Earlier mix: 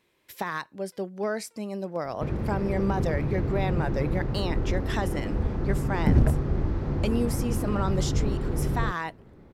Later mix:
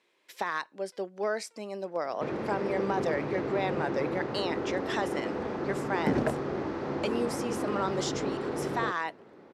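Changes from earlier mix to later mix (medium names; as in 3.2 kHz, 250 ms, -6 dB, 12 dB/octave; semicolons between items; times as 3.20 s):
background +4.5 dB; master: add band-pass 350–7900 Hz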